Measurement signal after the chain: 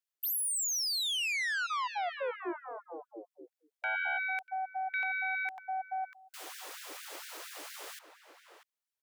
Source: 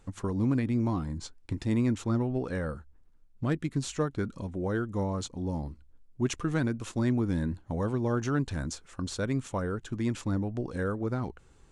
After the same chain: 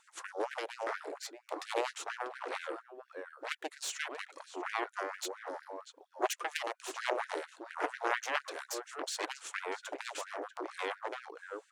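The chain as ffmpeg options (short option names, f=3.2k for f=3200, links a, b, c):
-filter_complex "[0:a]asplit=2[a][b];[b]adelay=641.4,volume=-8dB,highshelf=f=4k:g=-14.4[c];[a][c]amix=inputs=2:normalize=0,aeval=exprs='0.178*(cos(1*acos(clip(val(0)/0.178,-1,1)))-cos(1*PI/2))+0.0501*(cos(2*acos(clip(val(0)/0.178,-1,1)))-cos(2*PI/2))+0.0891*(cos(3*acos(clip(val(0)/0.178,-1,1)))-cos(3*PI/2))+0.0251*(cos(5*acos(clip(val(0)/0.178,-1,1)))-cos(5*PI/2))+0.0178*(cos(7*acos(clip(val(0)/0.178,-1,1)))-cos(7*PI/2))':c=same,afftfilt=real='re*gte(b*sr/1024,280*pow(1500/280,0.5+0.5*sin(2*PI*4.3*pts/sr)))':imag='im*gte(b*sr/1024,280*pow(1500/280,0.5+0.5*sin(2*PI*4.3*pts/sr)))':win_size=1024:overlap=0.75,volume=8dB"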